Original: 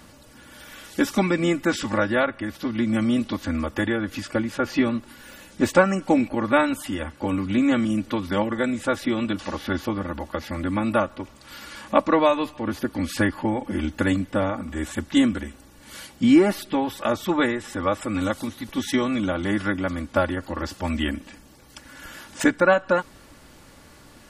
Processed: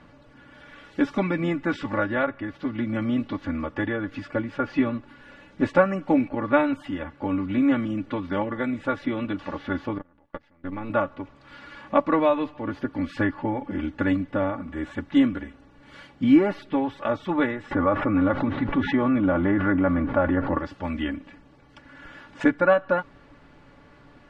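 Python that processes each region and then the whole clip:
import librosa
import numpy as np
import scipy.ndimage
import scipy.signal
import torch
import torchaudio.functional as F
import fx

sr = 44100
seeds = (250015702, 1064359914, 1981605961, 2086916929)

y = fx.chain(x, sr, fx.halfwave_gain(db=-7.0),
    fx.level_steps(step_db=14),
    fx.upward_expand(threshold_db=-37.0, expansion=2.5), at=(9.98, 10.9))
y = fx.chain(y, sr, fx.lowpass(hz=1800.0, slope=12),
    fx.env_flatten(amount_pct=70), at=(17.71, 20.58))
y = scipy.signal.sosfilt(scipy.signal.butter(2, 2400.0, 'lowpass', fs=sr, output='sos'), y)
y = y + 0.38 * np.pad(y, (int(7.0 * sr / 1000.0), 0))[:len(y)]
y = y * librosa.db_to_amplitude(-2.5)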